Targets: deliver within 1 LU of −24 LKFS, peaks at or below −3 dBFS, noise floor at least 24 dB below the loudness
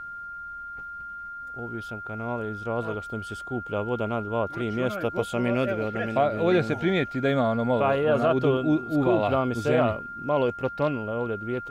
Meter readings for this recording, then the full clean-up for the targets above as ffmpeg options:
interfering tone 1,400 Hz; level of the tone −35 dBFS; integrated loudness −26.0 LKFS; sample peak −12.5 dBFS; target loudness −24.0 LKFS
→ -af "bandreject=frequency=1400:width=30"
-af "volume=2dB"

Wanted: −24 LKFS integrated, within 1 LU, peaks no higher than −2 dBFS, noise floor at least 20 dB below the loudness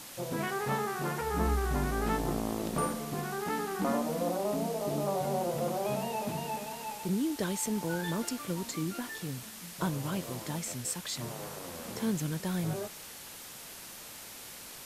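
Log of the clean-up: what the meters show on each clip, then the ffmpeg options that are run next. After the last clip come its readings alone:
background noise floor −47 dBFS; target noise floor −54 dBFS; integrated loudness −34.0 LKFS; sample peak −18.0 dBFS; target loudness −24.0 LKFS
→ -af "afftdn=noise_reduction=7:noise_floor=-47"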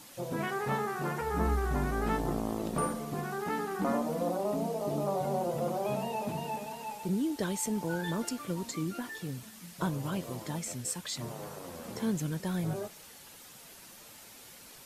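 background noise floor −52 dBFS; target noise floor −54 dBFS
→ -af "afftdn=noise_reduction=6:noise_floor=-52"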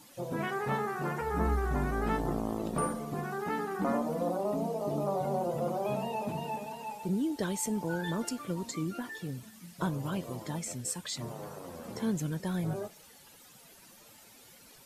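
background noise floor −56 dBFS; integrated loudness −34.0 LKFS; sample peak −18.5 dBFS; target loudness −24.0 LKFS
→ -af "volume=10dB"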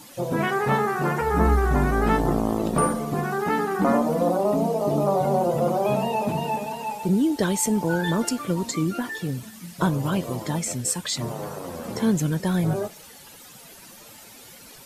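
integrated loudness −24.0 LKFS; sample peak −8.5 dBFS; background noise floor −46 dBFS

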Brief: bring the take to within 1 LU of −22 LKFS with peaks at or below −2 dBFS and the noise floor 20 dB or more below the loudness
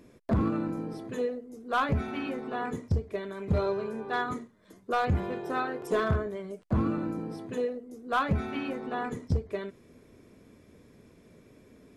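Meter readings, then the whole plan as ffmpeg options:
integrated loudness −31.5 LKFS; sample peak −19.0 dBFS; target loudness −22.0 LKFS
→ -af "volume=9.5dB"

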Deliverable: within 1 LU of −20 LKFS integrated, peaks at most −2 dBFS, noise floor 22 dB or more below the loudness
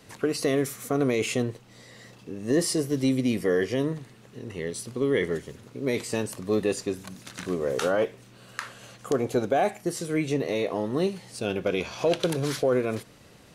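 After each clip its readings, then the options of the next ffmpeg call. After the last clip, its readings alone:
integrated loudness −27.5 LKFS; sample peak −11.5 dBFS; target loudness −20.0 LKFS
→ -af "volume=7.5dB"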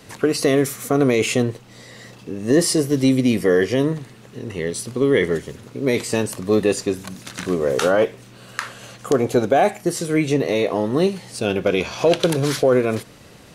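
integrated loudness −20.0 LKFS; sample peak −4.0 dBFS; background noise floor −45 dBFS

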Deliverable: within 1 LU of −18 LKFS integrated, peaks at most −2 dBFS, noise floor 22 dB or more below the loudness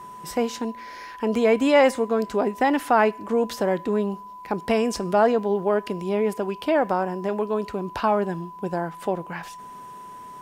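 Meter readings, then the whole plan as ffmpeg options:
interfering tone 1,000 Hz; level of the tone −38 dBFS; integrated loudness −23.5 LKFS; sample peak −6.5 dBFS; target loudness −18.0 LKFS
→ -af "bandreject=frequency=1000:width=30"
-af "volume=5.5dB,alimiter=limit=-2dB:level=0:latency=1"

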